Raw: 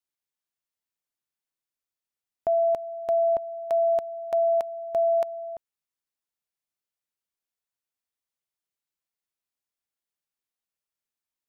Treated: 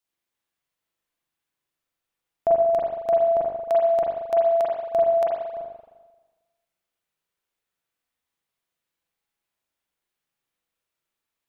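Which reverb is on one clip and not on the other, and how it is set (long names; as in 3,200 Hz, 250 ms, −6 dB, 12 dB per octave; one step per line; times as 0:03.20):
spring reverb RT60 1.2 s, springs 38/44 ms, chirp 25 ms, DRR −4.5 dB
level +3.5 dB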